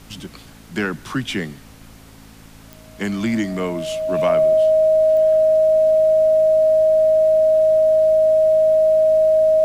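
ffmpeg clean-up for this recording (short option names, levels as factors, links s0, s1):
-af "adeclick=t=4,bandreject=f=54.5:t=h:w=4,bandreject=f=109:t=h:w=4,bandreject=f=163.5:t=h:w=4,bandreject=f=218:t=h:w=4,bandreject=f=272.5:t=h:w=4,bandreject=f=630:w=30,agate=range=0.0891:threshold=0.0178"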